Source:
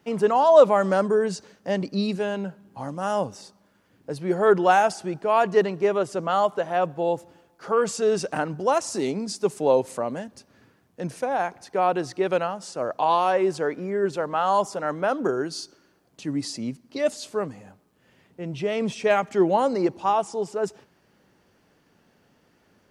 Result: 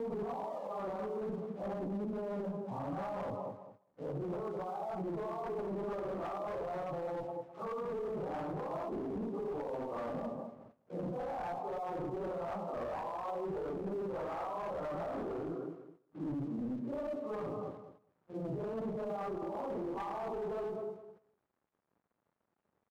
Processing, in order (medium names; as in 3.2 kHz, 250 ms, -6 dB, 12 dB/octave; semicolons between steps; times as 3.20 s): phase randomisation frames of 200 ms; Chebyshev low-pass 1.2 kHz, order 5; compressor with a negative ratio -28 dBFS, ratio -1; crossover distortion -57 dBFS; on a send: feedback delay 207 ms, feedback 23%, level -12 dB; on the sum: gate -56 dBFS, range -9 dB; high-pass 93 Hz 6 dB/octave; one-sided clip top -28 dBFS, bottom -19.5 dBFS; peak limiter -30.5 dBFS, peak gain reduction 11 dB; trim -1.5 dB